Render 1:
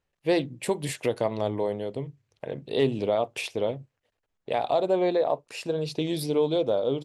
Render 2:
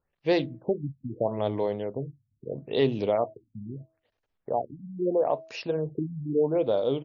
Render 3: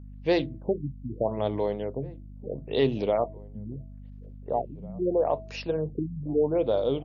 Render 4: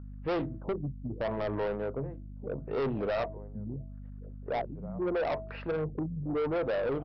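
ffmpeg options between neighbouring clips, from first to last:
-af "bandreject=f=323.2:t=h:w=4,bandreject=f=646.4:t=h:w=4,afftfilt=real='re*lt(b*sr/1024,250*pow(7000/250,0.5+0.5*sin(2*PI*0.77*pts/sr)))':imag='im*lt(b*sr/1024,250*pow(7000/250,0.5+0.5*sin(2*PI*0.77*pts/sr)))':win_size=1024:overlap=0.75"
-filter_complex "[0:a]aeval=exprs='val(0)+0.00794*(sin(2*PI*50*n/s)+sin(2*PI*2*50*n/s)/2+sin(2*PI*3*50*n/s)/3+sin(2*PI*4*50*n/s)/4+sin(2*PI*5*50*n/s)/5)':c=same,asplit=2[s0][s1];[s1]adelay=1749,volume=0.0794,highshelf=f=4000:g=-39.4[s2];[s0][s2]amix=inputs=2:normalize=0"
-af "lowpass=f=1400:t=q:w=3.7,aresample=11025,asoftclip=type=tanh:threshold=0.0447,aresample=44100"

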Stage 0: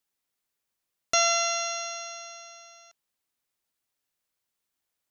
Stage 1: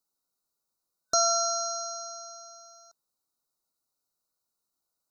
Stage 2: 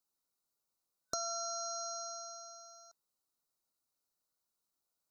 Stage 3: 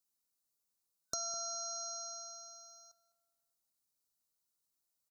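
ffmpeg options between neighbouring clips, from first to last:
-af "afftfilt=real='re*(1-between(b*sr/4096,1500,3700))':imag='im*(1-between(b*sr/4096,1500,3700))':win_size=4096:overlap=0.75,equalizer=f=92:w=2.1:g=-5"
-af "acompressor=threshold=0.0224:ratio=5,volume=0.668"
-filter_complex "[0:a]bass=f=250:g=4,treble=f=4000:g=8,asplit=2[s0][s1];[s1]adelay=206,lowpass=f=2000:p=1,volume=0.211,asplit=2[s2][s3];[s3]adelay=206,lowpass=f=2000:p=1,volume=0.39,asplit=2[s4][s5];[s5]adelay=206,lowpass=f=2000:p=1,volume=0.39,asplit=2[s6][s7];[s7]adelay=206,lowpass=f=2000:p=1,volume=0.39[s8];[s0][s2][s4][s6][s8]amix=inputs=5:normalize=0,volume=0.531"

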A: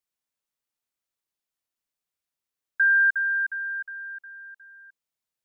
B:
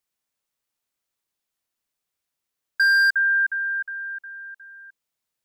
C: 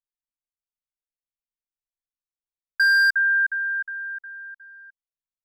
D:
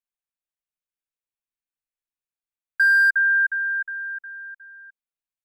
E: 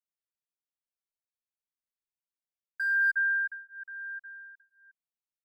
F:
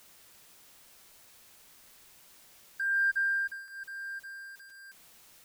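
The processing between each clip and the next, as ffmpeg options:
-af "asoftclip=type=hard:threshold=0.0944,volume=1.78"
-af "anlmdn=0.631"
-af "equalizer=f=1600:t=o:w=0.33:g=4,equalizer=f=2500:t=o:w=0.33:g=5,equalizer=f=5000:t=o:w=0.33:g=-10,volume=0.708"
-filter_complex "[0:a]asplit=2[s0][s1];[s1]adelay=8.4,afreqshift=0.98[s2];[s0][s2]amix=inputs=2:normalize=1,volume=0.422"
-af "aeval=exprs='val(0)+0.5*0.00668*sgn(val(0))':c=same,volume=0.75"

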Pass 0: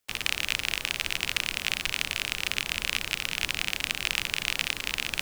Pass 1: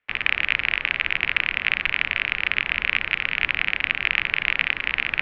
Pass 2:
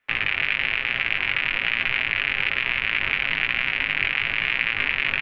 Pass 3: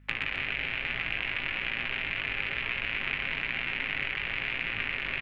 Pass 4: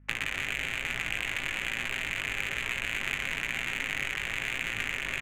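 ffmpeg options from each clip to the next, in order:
-af "lowpass=f=2700:w=0.5412,lowpass=f=2700:w=1.3066,equalizer=f=2000:t=o:w=1.4:g=10.5,volume=1.19"
-af "aecho=1:1:7.5:0.38,alimiter=limit=0.299:level=0:latency=1:release=86,flanger=delay=16.5:depth=4.4:speed=1.1,volume=2.51"
-filter_complex "[0:a]acrossover=split=260|700[s0][s1][s2];[s0]acompressor=threshold=0.00562:ratio=4[s3];[s1]acompressor=threshold=0.00316:ratio=4[s4];[s2]acompressor=threshold=0.0316:ratio=4[s5];[s3][s4][s5]amix=inputs=3:normalize=0,aeval=exprs='val(0)+0.002*(sin(2*PI*50*n/s)+sin(2*PI*2*50*n/s)/2+sin(2*PI*3*50*n/s)/3+sin(2*PI*4*50*n/s)/4+sin(2*PI*5*50*n/s)/5)':c=same,aecho=1:1:125.4|262.4:0.562|0.355"
-af "adynamicsmooth=sensitivity=5.5:basefreq=1500"

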